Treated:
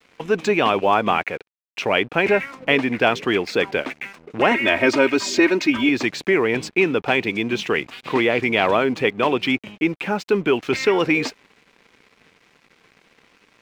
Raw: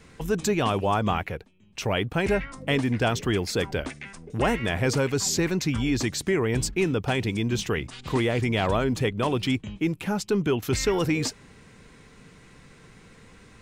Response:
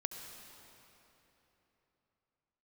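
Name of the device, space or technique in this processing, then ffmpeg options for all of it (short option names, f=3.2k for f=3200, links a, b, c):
pocket radio on a weak battery: -filter_complex "[0:a]asettb=1/sr,asplit=3[a][b][c];[a]atrim=end=4.514[d];[b]atrim=start=4.51:end=5.89,asetpts=PTS-STARTPTS,afade=t=in:d=0.004:c=qsin,afade=t=out:st=1.376:d=0.004:c=qsin,aecho=1:1:3.2:0.91,atrim=end_sample=60858[e];[c]atrim=start=5.886[f];[d][e]acrossfade=d=0.004:c1=hsin:c2=qsin[g];[g][f]acrossfade=d=0.004:c1=qsin:c2=hsin,highpass=280,lowpass=3.5k,aeval=exprs='sgn(val(0))*max(abs(val(0))-0.00211,0)':c=same,equalizer=f=2.4k:t=o:w=0.39:g=5.5,volume=7.5dB"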